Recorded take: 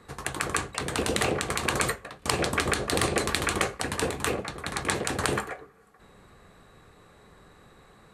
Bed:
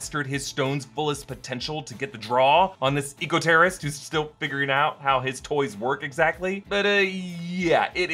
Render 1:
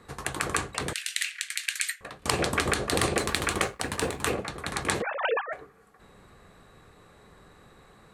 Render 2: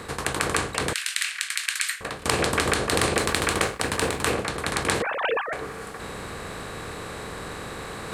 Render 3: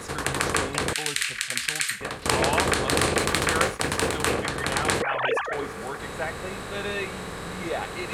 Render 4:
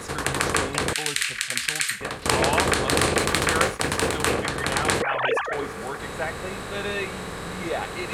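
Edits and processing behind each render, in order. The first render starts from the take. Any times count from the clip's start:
0.93–2.01 steep high-pass 1700 Hz 48 dB/oct; 3.14–4.23 G.711 law mismatch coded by A; 5.02–5.53 sine-wave speech
per-bin compression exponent 0.6; reverse; upward compressor, threshold -28 dBFS; reverse
add bed -10.5 dB
gain +1.5 dB; limiter -1 dBFS, peak gain reduction 1 dB

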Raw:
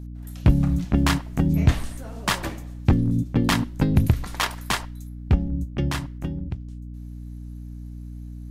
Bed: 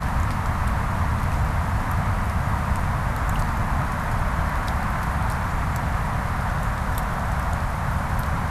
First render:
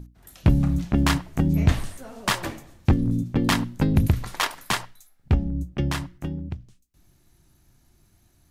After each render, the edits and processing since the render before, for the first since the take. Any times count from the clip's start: notches 60/120/180/240/300 Hz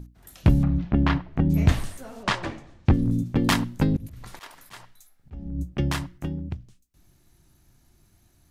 0.63–1.5 air absorption 310 m; 2.23–2.94 air absorption 110 m; 3.81–5.59 auto swell 0.372 s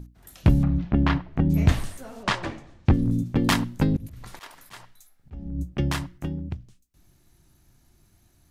nothing audible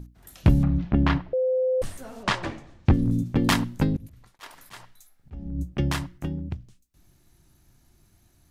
1.33–1.82 bleep 514 Hz -20 dBFS; 3.77–4.39 fade out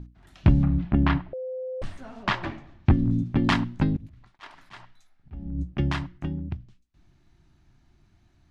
LPF 3600 Hz 12 dB/oct; bell 490 Hz -14.5 dB 0.22 oct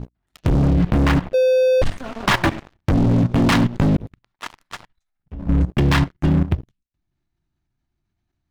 sample leveller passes 5; level quantiser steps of 15 dB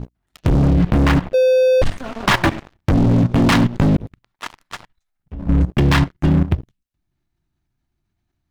gain +2 dB

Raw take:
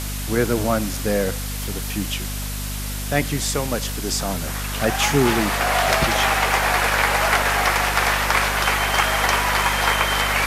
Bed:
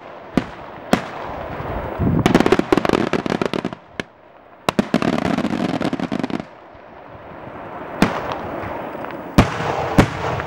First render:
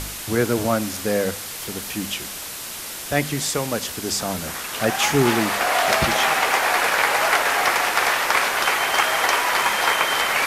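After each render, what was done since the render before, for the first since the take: de-hum 50 Hz, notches 5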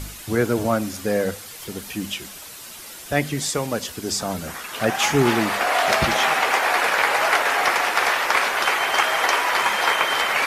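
denoiser 8 dB, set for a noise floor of -33 dBFS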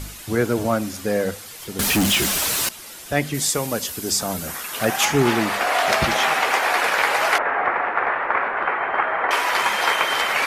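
1.79–2.69 sample leveller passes 5; 3.34–5.05 high shelf 8600 Hz +11.5 dB; 7.38–9.31 LPF 1900 Hz 24 dB/oct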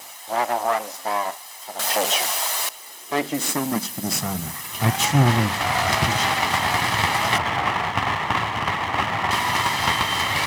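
minimum comb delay 1 ms; high-pass sweep 670 Hz -> 100 Hz, 2.54–4.59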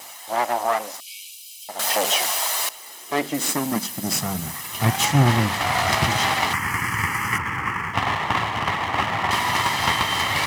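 1–1.69 Chebyshev high-pass 2300 Hz, order 10; 6.53–7.94 fixed phaser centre 1600 Hz, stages 4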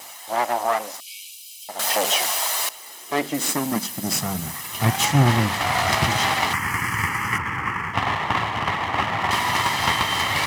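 7.09–9.21 high shelf 6300 Hz -4.5 dB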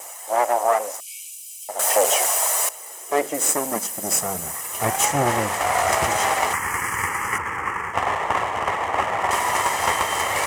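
graphic EQ 125/250/500/4000/8000 Hz -11/-7/+9/-11/+9 dB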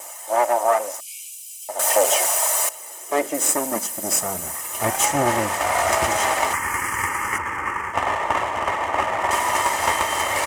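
comb 3.3 ms, depth 35%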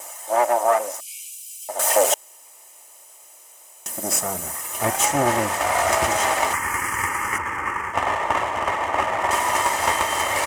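2.14–3.86 room tone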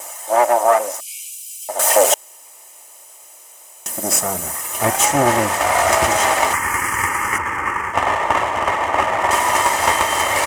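gain +4.5 dB; limiter -1 dBFS, peak gain reduction 1 dB

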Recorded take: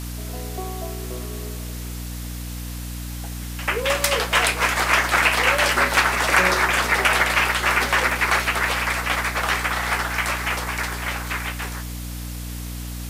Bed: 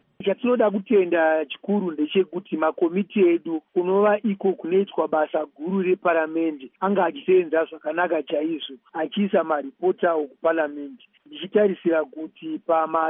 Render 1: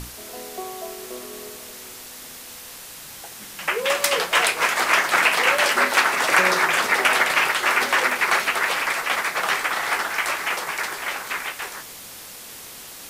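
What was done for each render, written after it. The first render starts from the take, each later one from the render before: notches 60/120/180/240/300 Hz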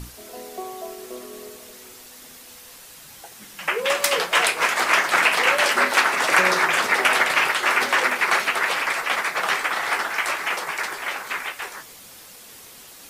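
denoiser 6 dB, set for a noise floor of -40 dBFS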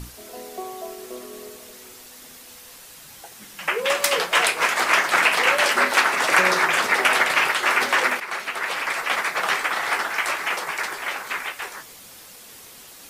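8.2–9.12 fade in, from -13 dB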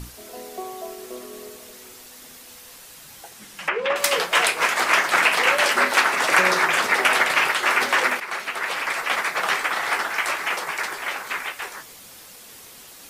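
3.29–3.96 treble ducked by the level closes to 2000 Hz, closed at -18.5 dBFS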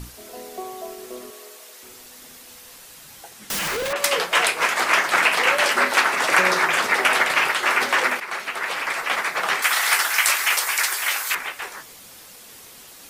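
1.3–1.83 HPF 560 Hz; 3.5–3.93 infinite clipping; 9.62–11.35 tilt +4.5 dB/oct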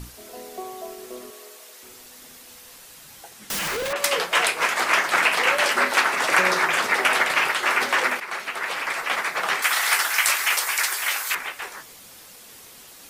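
gain -1.5 dB

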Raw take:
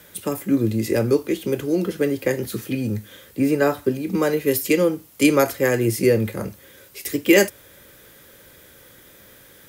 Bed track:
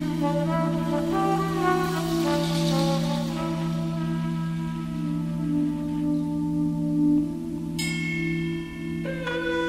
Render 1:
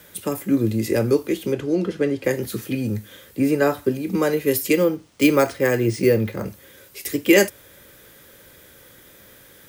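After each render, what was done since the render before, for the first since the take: 1.52–2.24 air absorption 72 m; 4.73–6.46 careless resampling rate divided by 3×, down filtered, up hold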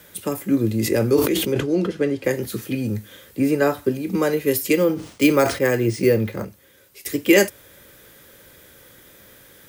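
0.79–1.91 sustainer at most 51 dB/s; 4.81–5.71 sustainer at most 120 dB/s; 6.45–7.06 gain -6.5 dB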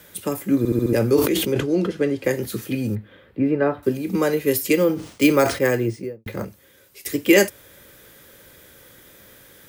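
0.58 stutter in place 0.07 s, 5 plays; 2.95–3.83 air absorption 470 m; 5.66–6.26 studio fade out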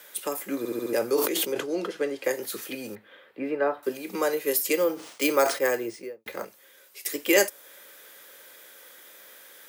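HPF 560 Hz 12 dB/oct; dynamic EQ 2400 Hz, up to -5 dB, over -38 dBFS, Q 0.8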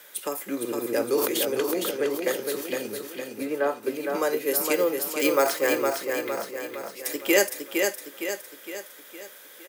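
feedback echo 0.461 s, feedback 50%, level -4.5 dB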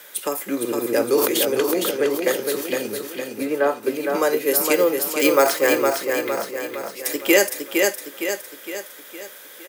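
gain +5.5 dB; limiter -3 dBFS, peak gain reduction 2.5 dB

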